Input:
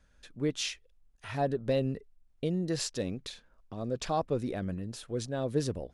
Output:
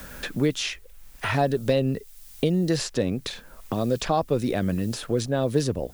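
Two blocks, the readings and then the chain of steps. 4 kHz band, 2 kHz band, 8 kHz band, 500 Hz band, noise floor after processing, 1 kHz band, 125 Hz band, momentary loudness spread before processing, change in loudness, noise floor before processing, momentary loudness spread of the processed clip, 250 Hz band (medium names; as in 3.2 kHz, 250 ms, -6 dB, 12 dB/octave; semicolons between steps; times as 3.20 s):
+7.0 dB, +11.0 dB, +5.0 dB, +7.5 dB, -48 dBFS, +8.0 dB, +8.5 dB, 14 LU, +7.5 dB, -66 dBFS, 9 LU, +8.5 dB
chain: added noise blue -68 dBFS; three bands compressed up and down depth 70%; trim +8 dB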